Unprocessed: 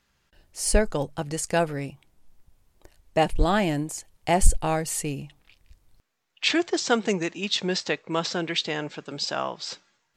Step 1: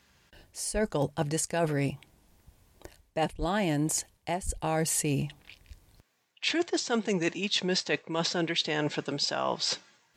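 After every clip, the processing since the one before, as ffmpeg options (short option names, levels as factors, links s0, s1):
-af "areverse,acompressor=threshold=0.0282:ratio=12,areverse,highpass=46,bandreject=f=1300:w=11,volume=2.11"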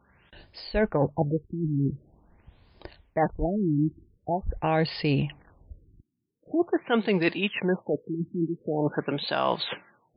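-af "highshelf=f=5200:g=5.5,asoftclip=type=hard:threshold=0.168,afftfilt=real='re*lt(b*sr/1024,350*pow(5200/350,0.5+0.5*sin(2*PI*0.45*pts/sr)))':imag='im*lt(b*sr/1024,350*pow(5200/350,0.5+0.5*sin(2*PI*0.45*pts/sr)))':win_size=1024:overlap=0.75,volume=1.68"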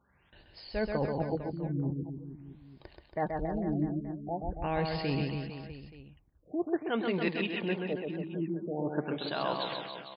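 -af "aecho=1:1:130|279.5|451.4|649.1|876.5:0.631|0.398|0.251|0.158|0.1,volume=0.398"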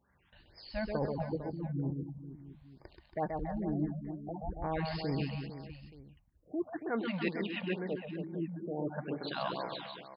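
-af "afftfilt=real='re*(1-between(b*sr/1024,330*pow(3400/330,0.5+0.5*sin(2*PI*2.2*pts/sr))/1.41,330*pow(3400/330,0.5+0.5*sin(2*PI*2.2*pts/sr))*1.41))':imag='im*(1-between(b*sr/1024,330*pow(3400/330,0.5+0.5*sin(2*PI*2.2*pts/sr))/1.41,330*pow(3400/330,0.5+0.5*sin(2*PI*2.2*pts/sr))*1.41))':win_size=1024:overlap=0.75,volume=0.75"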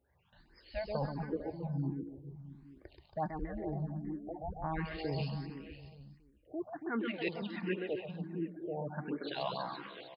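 -filter_complex "[0:a]aecho=1:1:277:0.266,asplit=2[s0][s1];[s1]afreqshift=1.4[s2];[s0][s2]amix=inputs=2:normalize=1,volume=1.12"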